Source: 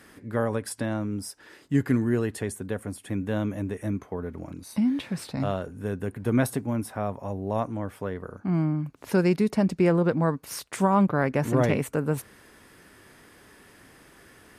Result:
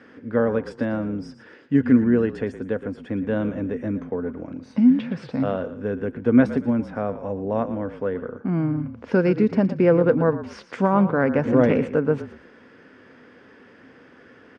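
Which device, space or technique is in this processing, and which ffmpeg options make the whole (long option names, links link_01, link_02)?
frequency-shifting delay pedal into a guitar cabinet: -filter_complex "[0:a]asplit=4[link_01][link_02][link_03][link_04];[link_02]adelay=116,afreqshift=-38,volume=-13dB[link_05];[link_03]adelay=232,afreqshift=-76,volume=-23.2dB[link_06];[link_04]adelay=348,afreqshift=-114,volume=-33.3dB[link_07];[link_01][link_05][link_06][link_07]amix=inputs=4:normalize=0,highpass=90,equalizer=frequency=250:width_type=q:width=4:gain=10,equalizer=frequency=490:width_type=q:width=4:gain=10,equalizer=frequency=1500:width_type=q:width=4:gain=5,equalizer=frequency=4000:width_type=q:width=4:gain=-8,lowpass=frequency=4600:width=0.5412,lowpass=frequency=4600:width=1.3066"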